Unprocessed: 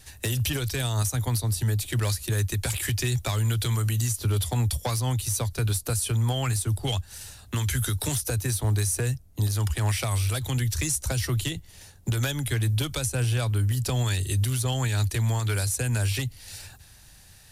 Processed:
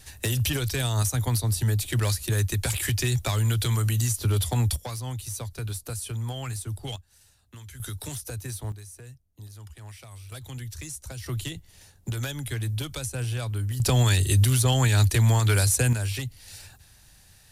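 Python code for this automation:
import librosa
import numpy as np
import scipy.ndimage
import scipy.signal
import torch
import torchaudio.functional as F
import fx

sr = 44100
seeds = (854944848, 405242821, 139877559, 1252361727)

y = fx.gain(x, sr, db=fx.steps((0.0, 1.0), (4.76, -7.0), (6.96, -17.5), (7.8, -8.0), (8.72, -18.5), (10.32, -11.0), (11.26, -4.5), (13.8, 5.0), (15.93, -3.0)))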